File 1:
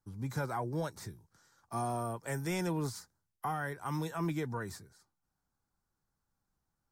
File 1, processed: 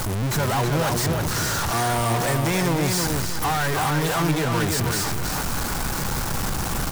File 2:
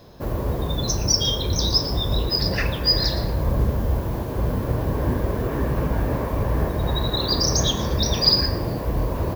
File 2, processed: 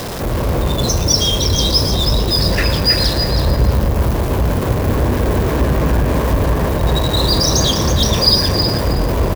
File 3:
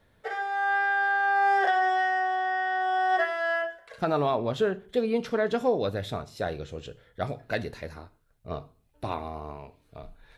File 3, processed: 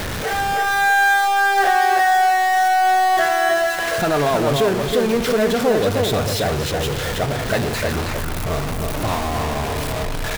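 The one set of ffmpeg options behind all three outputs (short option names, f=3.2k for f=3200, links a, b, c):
-filter_complex "[0:a]aeval=exprs='val(0)+0.5*0.075*sgn(val(0))':c=same,asplit=2[a][b];[b]adelay=320,lowpass=f=4.8k:p=1,volume=-4dB,asplit=2[c][d];[d]adelay=320,lowpass=f=4.8k:p=1,volume=0.29,asplit=2[e][f];[f]adelay=320,lowpass=f=4.8k:p=1,volume=0.29,asplit=2[g][h];[h]adelay=320,lowpass=f=4.8k:p=1,volume=0.29[i];[a][c][e][g][i]amix=inputs=5:normalize=0,volume=3dB"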